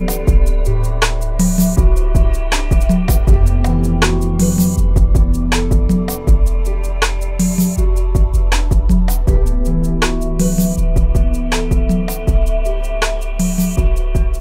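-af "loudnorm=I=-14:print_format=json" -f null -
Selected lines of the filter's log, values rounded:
"input_i" : "-16.2",
"input_tp" : "-1.7",
"input_lra" : "3.0",
"input_thresh" : "-26.2",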